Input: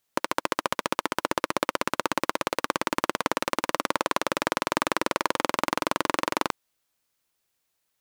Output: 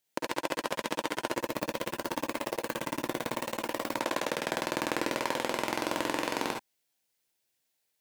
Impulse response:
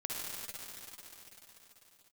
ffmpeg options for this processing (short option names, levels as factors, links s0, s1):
-filter_complex "[0:a]equalizer=f=1200:w=3.3:g=-9.5,asettb=1/sr,asplit=3[s0][s1][s2];[s0]atrim=end=1.334[s3];[s1]atrim=start=1.33:end=3.92,asetpts=PTS-STARTPTS,afade=t=in:d=0.004:c=qsin,afade=t=out:st=2.586:d=0.004:c=qsin,aeval=exprs='0.266*(abs(mod(val(0)/0.266+3,4)-2)-1)':c=same[s4];[s2]atrim=start=3.916[s5];[s3][s4]acrossfade=d=0.004:c1=hsin:c2=qsin[s6];[s6][s5]acrossfade=d=0.004:c1=qsin:c2=hsin,lowshelf=f=88:g=-10,asoftclip=type=tanh:threshold=0.473[s7];[1:a]atrim=start_sample=2205,atrim=end_sample=3969[s8];[s7][s8]afir=irnorm=-1:irlink=0"